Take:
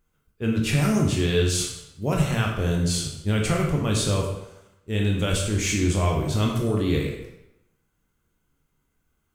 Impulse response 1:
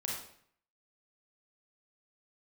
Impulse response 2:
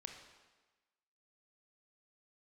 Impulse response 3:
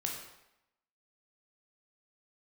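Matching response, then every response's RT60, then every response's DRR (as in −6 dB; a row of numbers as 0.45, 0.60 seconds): 3; 0.60, 1.2, 0.85 seconds; −3.0, 3.5, −0.5 decibels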